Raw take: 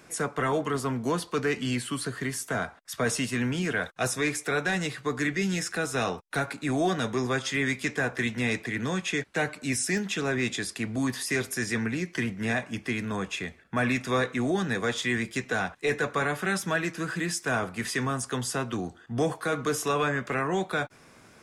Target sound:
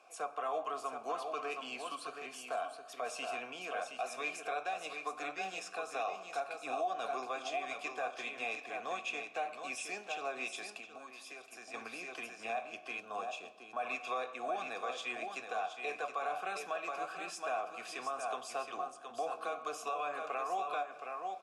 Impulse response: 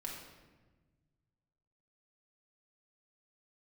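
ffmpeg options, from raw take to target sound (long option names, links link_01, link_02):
-filter_complex "[0:a]asplit=3[link_01][link_02][link_03];[link_01]bandpass=frequency=730:width_type=q:width=8,volume=0dB[link_04];[link_02]bandpass=frequency=1090:width_type=q:width=8,volume=-6dB[link_05];[link_03]bandpass=frequency=2440:width_type=q:width=8,volume=-9dB[link_06];[link_04][link_05][link_06]amix=inputs=3:normalize=0,bass=frequency=250:gain=-14,treble=frequency=4000:gain=11,aecho=1:1:720:0.447,asplit=2[link_07][link_08];[1:a]atrim=start_sample=2205[link_09];[link_08][link_09]afir=irnorm=-1:irlink=0,volume=-8dB[link_10];[link_07][link_10]amix=inputs=2:normalize=0,acontrast=24,alimiter=level_in=0.5dB:limit=-24dB:level=0:latency=1:release=142,volume=-0.5dB,asettb=1/sr,asplit=3[link_11][link_12][link_13];[link_11]atrim=end=10.794[link_14];[link_12]atrim=start=10.79:end=11.74,asetpts=PTS-STARTPTS,afade=type=in:duration=0.004:curve=qsin,afade=type=out:start_time=0.946:duration=0.004:curve=qsin,acompressor=threshold=-45dB:ratio=5[link_15];[link_13]atrim=start=11.736[link_16];[link_14][link_15]acrossfade=duration=0.004:curve1=hsin:curve2=qsin[link_17];[link_17][link_16]acrossfade=duration=0.004:curve1=qsin:curve2=hsin,asettb=1/sr,asplit=3[link_18][link_19][link_20];[link_18]atrim=end=13.004[link_21];[link_19]atrim=start=13:end=13.8,asetpts=PTS-STARTPTS,afade=type=in:duration=0.004:curve=qsin,afade=type=out:start_time=0.796:duration=0.004:curve=qsin,equalizer=frequency=2100:width_type=o:width=0.51:gain=-12.5[link_22];[link_20]atrim=start=13.796[link_23];[link_21][link_22]acrossfade=duration=0.004:curve1=hsin:curve2=qsin[link_24];[link_24][link_23]acrossfade=duration=0.004:curve1=qsin:curve2=hsin,volume=-3dB"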